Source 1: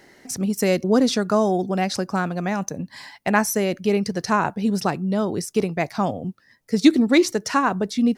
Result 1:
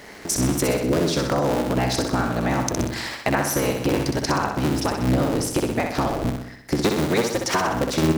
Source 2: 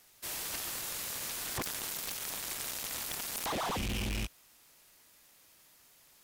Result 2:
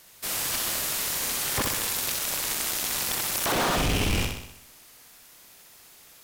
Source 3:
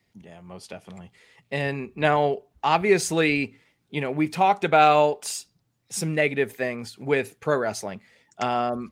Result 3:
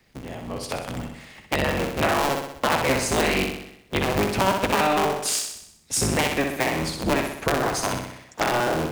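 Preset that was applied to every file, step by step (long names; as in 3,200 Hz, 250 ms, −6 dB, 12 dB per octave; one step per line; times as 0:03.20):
sub-harmonics by changed cycles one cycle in 3, inverted
downward compressor 6 to 1, threshold −29 dBFS
on a send: flutter between parallel walls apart 10.8 metres, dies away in 0.74 s
on the sum: level +8.5 dB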